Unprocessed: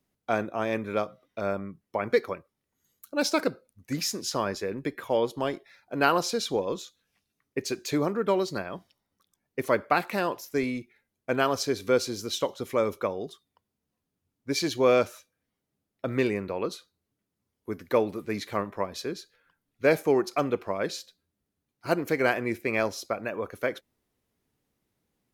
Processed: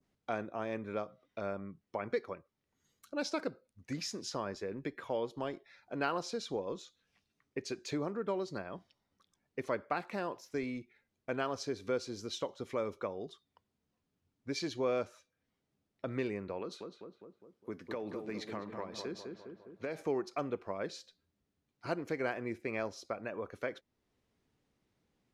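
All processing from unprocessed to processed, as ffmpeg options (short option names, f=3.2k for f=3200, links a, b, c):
-filter_complex "[0:a]asettb=1/sr,asplit=3[a][b][c];[a]atrim=end=16.604[d];[b]atrim=start=16.6:end=20.02,asetpts=PTS-STARTPTS,afade=t=in:d=0.004:c=qsin,afade=t=out:st=3.416:d=0.004:c=qsin,highpass=120,acompressor=threshold=-27dB:ratio=6:attack=3.2:release=140:knee=1:detection=peak,asplit=2[e][f];[f]adelay=204,lowpass=f=1.4k:p=1,volume=-6dB,asplit=2[g][h];[h]adelay=204,lowpass=f=1.4k:p=1,volume=0.52,asplit=2[i][j];[j]adelay=204,lowpass=f=1.4k:p=1,volume=0.52,asplit=2[k][l];[l]adelay=204,lowpass=f=1.4k:p=1,volume=0.52,asplit=2[m][n];[n]adelay=204,lowpass=f=1.4k:p=1,volume=0.52,asplit=2[o][p];[p]adelay=204,lowpass=f=1.4k:p=1,volume=0.52[q];[e][g][i][k][m][o][q]amix=inputs=7:normalize=0,atrim=end_sample=150822[r];[c]atrim=start=20.016[s];[d][r]acrossfade=d=0.004:c1=hsin:c2=qsin[t];[t][s]acrossfade=d=0.004:c1=qsin:c2=hsin,lowpass=6.2k,adynamicequalizer=threshold=0.00631:dfrequency=3100:dqfactor=0.75:tfrequency=3100:tqfactor=0.75:attack=5:release=100:ratio=0.375:range=3:mode=cutabove:tftype=bell,acompressor=threshold=-50dB:ratio=1.5"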